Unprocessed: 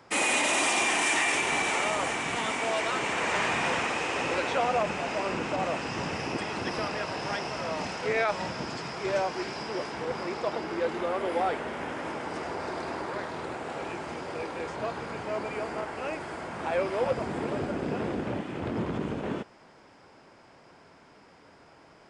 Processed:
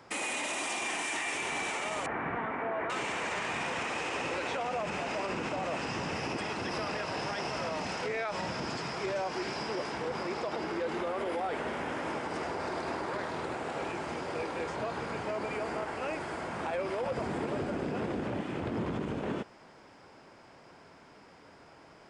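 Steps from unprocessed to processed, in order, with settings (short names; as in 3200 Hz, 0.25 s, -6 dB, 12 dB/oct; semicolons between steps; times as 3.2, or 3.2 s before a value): 2.06–2.9 Chebyshev low-pass 1700 Hz, order 3; limiter -25.5 dBFS, peak gain reduction 11 dB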